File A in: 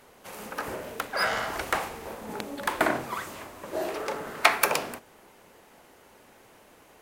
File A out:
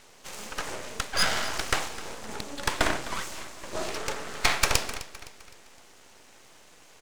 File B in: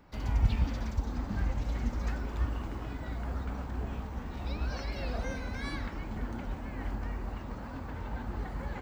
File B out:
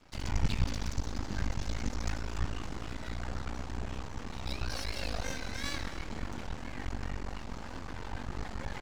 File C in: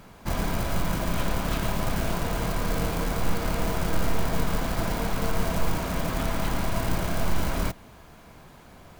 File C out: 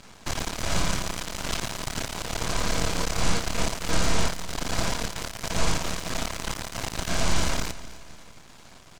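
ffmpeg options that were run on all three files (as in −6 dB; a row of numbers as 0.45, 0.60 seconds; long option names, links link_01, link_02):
-filter_complex "[0:a]lowpass=frequency=7300:width=0.5412,lowpass=frequency=7300:width=1.3066,crystalizer=i=4.5:c=0,aeval=exprs='max(val(0),0)':channel_layout=same,asplit=2[link_01][link_02];[link_02]aecho=0:1:257|514|771|1028:0.15|0.0628|0.0264|0.0111[link_03];[link_01][link_03]amix=inputs=2:normalize=0,alimiter=level_in=2dB:limit=-1dB:release=50:level=0:latency=1,volume=-1dB"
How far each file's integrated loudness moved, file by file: −0.5, −2.5, 0.0 LU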